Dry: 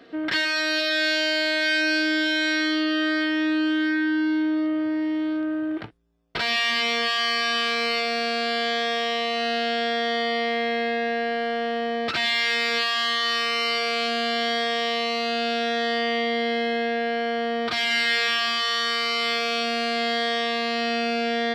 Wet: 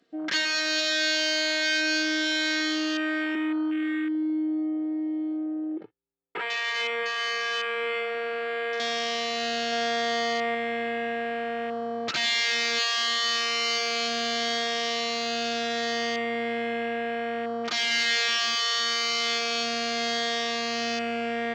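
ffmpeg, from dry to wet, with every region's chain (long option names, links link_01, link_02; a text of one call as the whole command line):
ffmpeg -i in.wav -filter_complex "[0:a]asettb=1/sr,asplit=3[link_01][link_02][link_03];[link_01]atrim=end=3.354[link_04];[link_02]atrim=start=3.35:end=8.8,asetpts=PTS-STARTPTS,afade=type=in:duration=0.004:curve=qsin,afade=type=out:start_time=5.446:duration=0.004:curve=qsin,highpass=140,lowpass=2300,aecho=1:1:2.3:0.74,atrim=end_sample=240345[link_05];[link_03]atrim=start=8.796[link_06];[link_04][link_05]acrossfade=duration=0.004:curve1=hsin:curve2=qsin[link_07];[link_07][link_06]acrossfade=duration=0.004:curve1=qsin:curve2=hsin,asettb=1/sr,asplit=3[link_08][link_09][link_10];[link_08]atrim=end=9.724[link_11];[link_09]atrim=start=9.72:end=10.55,asetpts=PTS-STARTPTS,afade=type=in:duration=0.004:curve=qsin,afade=type=out:start_time=0.826:duration=0.004:curve=qsin,lowpass=8900,equalizer=frequency=950:width_type=o:width=1.2:gain=5[link_12];[link_10]atrim=start=10.546[link_13];[link_11][link_12]acrossfade=duration=0.004:curve1=hsin:curve2=qsin[link_14];[link_14][link_13]acrossfade=duration=0.004:curve1=qsin:curve2=hsin,equalizer=frequency=7100:width_type=o:width=0.65:gain=12.5,afwtdn=0.0355,highshelf=frequency=4200:gain=6,volume=-4.5dB" out.wav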